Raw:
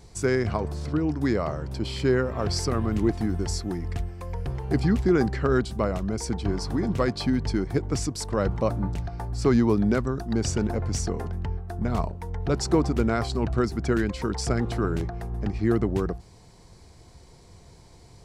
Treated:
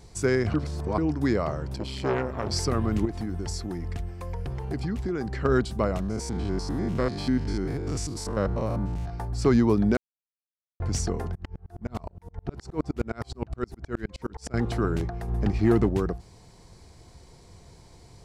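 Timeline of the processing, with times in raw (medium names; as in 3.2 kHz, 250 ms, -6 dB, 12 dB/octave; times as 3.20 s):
0.54–0.98 s: reverse
1.76–2.52 s: transformer saturation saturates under 880 Hz
3.05–5.45 s: compression 3:1, threshold -28 dBFS
6.00–9.10 s: spectrogram pixelated in time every 100 ms
9.97–10.80 s: mute
11.35–14.54 s: sawtooth tremolo in dB swelling 9.6 Hz, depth 36 dB
15.28–15.89 s: waveshaping leveller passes 1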